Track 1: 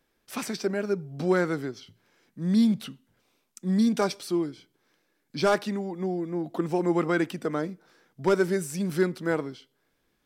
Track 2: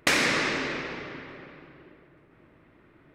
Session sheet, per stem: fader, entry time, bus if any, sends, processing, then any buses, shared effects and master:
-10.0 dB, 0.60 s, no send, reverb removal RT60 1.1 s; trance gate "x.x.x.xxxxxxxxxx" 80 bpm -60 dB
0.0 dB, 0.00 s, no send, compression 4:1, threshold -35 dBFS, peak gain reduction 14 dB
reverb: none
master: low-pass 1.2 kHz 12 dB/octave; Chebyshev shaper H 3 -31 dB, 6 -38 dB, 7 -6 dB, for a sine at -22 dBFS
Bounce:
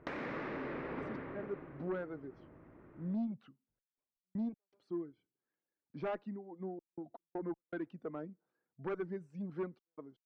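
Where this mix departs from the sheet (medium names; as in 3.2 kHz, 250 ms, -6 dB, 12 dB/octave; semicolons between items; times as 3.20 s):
stem 1 -10.0 dB -> -19.5 dB; stem 2 0.0 dB -> -8.0 dB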